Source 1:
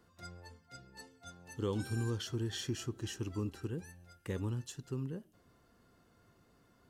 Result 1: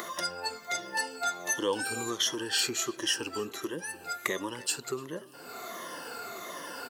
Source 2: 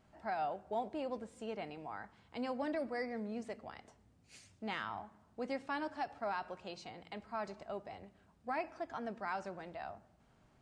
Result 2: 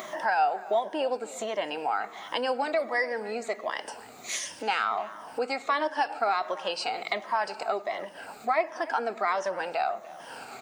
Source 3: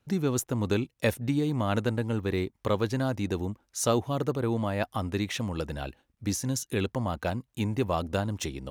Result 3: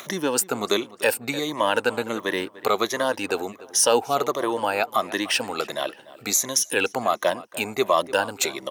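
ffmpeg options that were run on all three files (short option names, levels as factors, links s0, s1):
-filter_complex "[0:a]afftfilt=real='re*pow(10,12/40*sin(2*PI*(1.2*log(max(b,1)*sr/1024/100)/log(2)-(-1.4)*(pts-256)/sr)))':imag='im*pow(10,12/40*sin(2*PI*(1.2*log(max(b,1)*sr/1024/100)/log(2)-(-1.4)*(pts-256)/sr)))':win_size=1024:overlap=0.75,acompressor=mode=upward:threshold=0.0355:ratio=2.5,highpass=530,highshelf=f=10000:g=3.5,asplit=2[s0][s1];[s1]adelay=295,lowpass=f=2700:p=1,volume=0.126,asplit=2[s2][s3];[s3]adelay=295,lowpass=f=2700:p=1,volume=0.38,asplit=2[s4][s5];[s5]adelay=295,lowpass=f=2700:p=1,volume=0.38[s6];[s0][s2][s4][s6]amix=inputs=4:normalize=0,alimiter=level_in=6.68:limit=0.891:release=50:level=0:latency=1,volume=0.473"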